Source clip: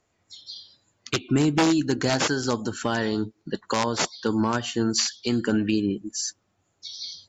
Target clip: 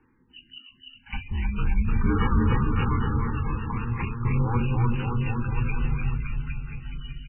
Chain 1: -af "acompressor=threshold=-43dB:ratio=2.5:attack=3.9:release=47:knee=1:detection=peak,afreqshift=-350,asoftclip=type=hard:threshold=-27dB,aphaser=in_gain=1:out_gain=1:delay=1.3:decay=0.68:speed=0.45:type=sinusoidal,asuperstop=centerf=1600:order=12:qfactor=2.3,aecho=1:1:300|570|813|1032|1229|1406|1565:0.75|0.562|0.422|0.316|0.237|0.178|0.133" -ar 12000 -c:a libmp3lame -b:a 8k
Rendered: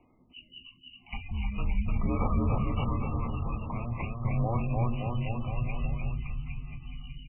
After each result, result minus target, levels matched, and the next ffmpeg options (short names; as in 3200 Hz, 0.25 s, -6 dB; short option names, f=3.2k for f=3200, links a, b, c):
compressor: peak gain reduction +6.5 dB; 500 Hz band +3.5 dB
-af "acompressor=threshold=-32dB:ratio=2.5:attack=3.9:release=47:knee=1:detection=peak,afreqshift=-350,asoftclip=type=hard:threshold=-27dB,aphaser=in_gain=1:out_gain=1:delay=1.3:decay=0.68:speed=0.45:type=sinusoidal,asuperstop=centerf=1600:order=12:qfactor=2.3,aecho=1:1:300|570|813|1032|1229|1406|1565:0.75|0.562|0.422|0.316|0.237|0.178|0.133" -ar 12000 -c:a libmp3lame -b:a 8k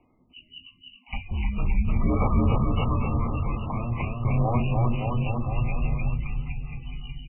500 Hz band +3.5 dB
-af "acompressor=threshold=-32dB:ratio=2.5:attack=3.9:release=47:knee=1:detection=peak,afreqshift=-350,asoftclip=type=hard:threshold=-27dB,aphaser=in_gain=1:out_gain=1:delay=1.3:decay=0.68:speed=0.45:type=sinusoidal,asuperstop=centerf=640:order=12:qfactor=2.3,aecho=1:1:300|570|813|1032|1229|1406|1565:0.75|0.562|0.422|0.316|0.237|0.178|0.133" -ar 12000 -c:a libmp3lame -b:a 8k